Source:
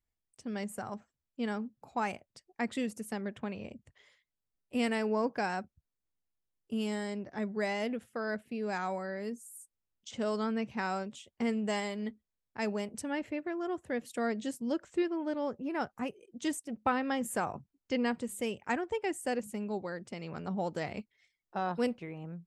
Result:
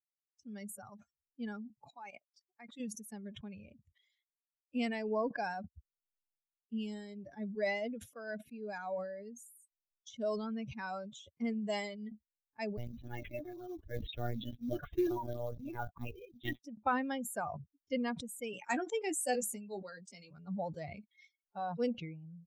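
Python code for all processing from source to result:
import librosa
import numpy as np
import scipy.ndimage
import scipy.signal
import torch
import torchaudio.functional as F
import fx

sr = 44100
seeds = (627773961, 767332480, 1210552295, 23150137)

y = fx.chain(x, sr, fx.highpass(hz=220.0, slope=12),
    fx.level_steps(step_db=19), at=(1.9, 2.8))
y = fx.chain(y, sr, fx.peak_eq(hz=110.0, db=10.5, octaves=0.92),
    fx.lpc_monotone(seeds[0], pitch_hz=120.0, order=16),
    fx.quant_float(bits=2), at=(12.77, 16.63))
y = fx.chain(y, sr, fx.highpass(hz=180.0, slope=24),
    fx.peak_eq(hz=8900.0, db=10.0, octaves=2.1),
    fx.doubler(ms=16.0, db=-7.0), at=(18.53, 20.31))
y = fx.bin_expand(y, sr, power=2.0)
y = fx.dynamic_eq(y, sr, hz=620.0, q=3.0, threshold_db=-51.0, ratio=4.0, max_db=5)
y = fx.sustainer(y, sr, db_per_s=56.0)
y = F.gain(torch.from_numpy(y), -1.5).numpy()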